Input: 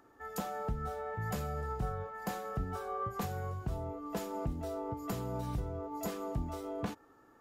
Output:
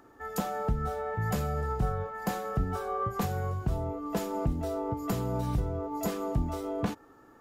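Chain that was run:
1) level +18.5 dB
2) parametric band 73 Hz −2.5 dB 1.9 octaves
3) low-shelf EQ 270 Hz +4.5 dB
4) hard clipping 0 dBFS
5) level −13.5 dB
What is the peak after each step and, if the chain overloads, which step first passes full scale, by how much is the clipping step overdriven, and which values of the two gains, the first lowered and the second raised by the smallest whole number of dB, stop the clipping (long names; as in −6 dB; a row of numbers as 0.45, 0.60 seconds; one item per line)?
−5.5, −6.0, −3.5, −3.5, −17.0 dBFS
no step passes full scale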